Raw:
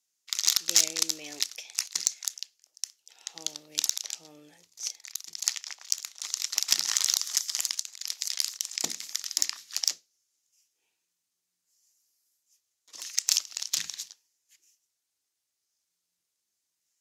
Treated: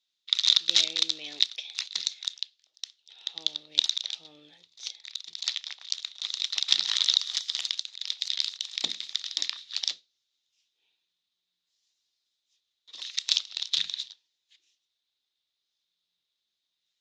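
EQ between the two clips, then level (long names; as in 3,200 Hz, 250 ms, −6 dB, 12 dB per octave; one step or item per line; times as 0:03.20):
low-pass with resonance 3,700 Hz, resonance Q 7.5
−3.5 dB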